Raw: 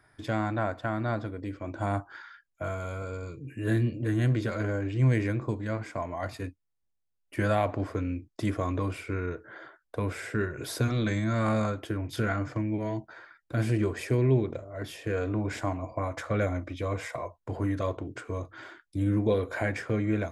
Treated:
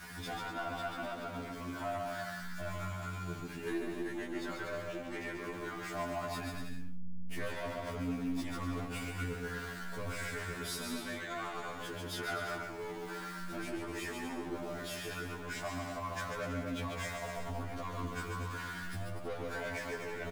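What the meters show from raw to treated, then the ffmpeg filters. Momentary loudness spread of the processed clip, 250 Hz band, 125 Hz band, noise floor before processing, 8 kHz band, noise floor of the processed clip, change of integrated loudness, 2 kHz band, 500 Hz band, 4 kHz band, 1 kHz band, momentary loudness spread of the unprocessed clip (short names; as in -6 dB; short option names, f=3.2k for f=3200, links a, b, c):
4 LU, -10.0 dB, -15.0 dB, -78 dBFS, 0.0 dB, -44 dBFS, -9.5 dB, -3.0 dB, -9.0 dB, 0.0 dB, -5.0 dB, 12 LU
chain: -filter_complex "[0:a]aeval=exprs='val(0)+0.5*0.00944*sgn(val(0))':c=same,aeval=exprs='val(0)+0.00562*(sin(2*PI*60*n/s)+sin(2*PI*2*60*n/s)/2+sin(2*PI*3*60*n/s)/3+sin(2*PI*4*60*n/s)/4+sin(2*PI*5*60*n/s)/5)':c=same,flanger=delay=4.1:depth=1.1:regen=-19:speed=0.11:shape=triangular,asoftclip=type=tanh:threshold=-30dB,asplit=2[a][b];[b]aecho=0:1:140|245|323.8|382.8|427.1:0.631|0.398|0.251|0.158|0.1[c];[a][c]amix=inputs=2:normalize=0,adynamicequalizer=threshold=0.00398:dfrequency=110:dqfactor=0.72:tfrequency=110:tqfactor=0.72:attack=5:release=100:ratio=0.375:range=2.5:mode=cutabove:tftype=bell,alimiter=level_in=5.5dB:limit=-24dB:level=0:latency=1:release=112,volume=-5.5dB,equalizer=f=500:t=o:w=0.51:g=-6,afftfilt=real='re*2*eq(mod(b,4),0)':imag='im*2*eq(mod(b,4),0)':win_size=2048:overlap=0.75,volume=3dB"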